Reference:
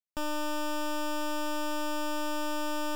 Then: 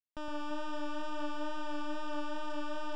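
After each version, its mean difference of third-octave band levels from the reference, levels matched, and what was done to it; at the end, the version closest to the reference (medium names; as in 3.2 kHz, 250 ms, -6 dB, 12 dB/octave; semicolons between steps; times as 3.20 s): 7.0 dB: wow and flutter 29 cents; distance through air 130 m; echo whose repeats swap between lows and highs 114 ms, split 2.4 kHz, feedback 72%, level -4.5 dB; trim -7 dB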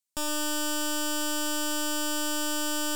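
4.0 dB: ten-band graphic EQ 4 kHz +5 dB, 8 kHz +11 dB, 16 kHz +8 dB; thinning echo 114 ms, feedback 54%, level -8 dB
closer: second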